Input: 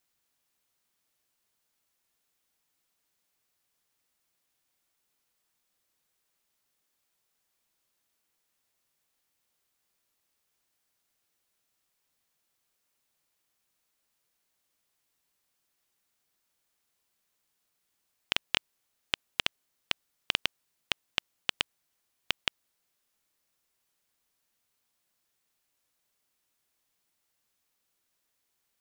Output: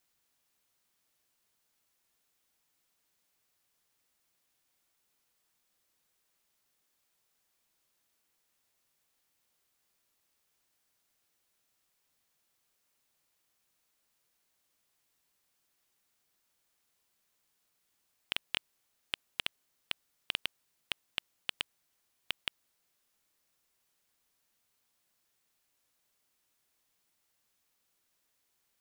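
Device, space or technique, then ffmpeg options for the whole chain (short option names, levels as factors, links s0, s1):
clipper into limiter: -af "asoftclip=type=hard:threshold=0.335,alimiter=limit=0.178:level=0:latency=1:release=21,volume=1.12"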